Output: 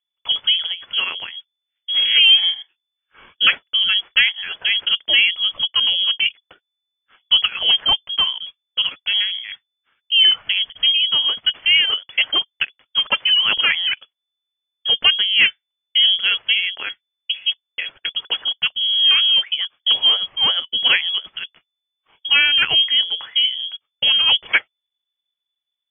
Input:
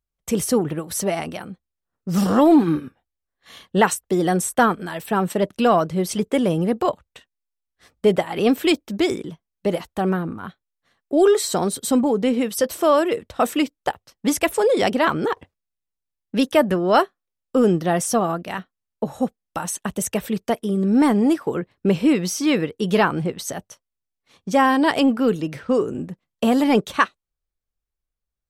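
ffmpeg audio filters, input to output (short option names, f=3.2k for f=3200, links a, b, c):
-af "asetrate=48510,aresample=44100,lowpass=f=3k:t=q:w=0.5098,lowpass=f=3k:t=q:w=0.6013,lowpass=f=3k:t=q:w=0.9,lowpass=f=3k:t=q:w=2.563,afreqshift=-3500,volume=1.5dB"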